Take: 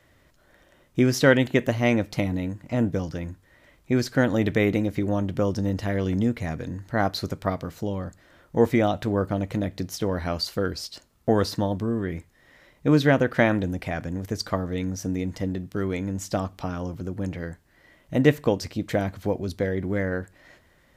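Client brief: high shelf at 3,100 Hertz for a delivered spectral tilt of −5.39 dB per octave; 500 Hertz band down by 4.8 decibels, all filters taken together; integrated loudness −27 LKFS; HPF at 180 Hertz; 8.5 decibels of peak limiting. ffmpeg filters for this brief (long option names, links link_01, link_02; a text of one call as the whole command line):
ffmpeg -i in.wav -af "highpass=180,equalizer=frequency=500:width_type=o:gain=-5.5,highshelf=frequency=3100:gain=-6.5,volume=4dB,alimiter=limit=-11.5dB:level=0:latency=1" out.wav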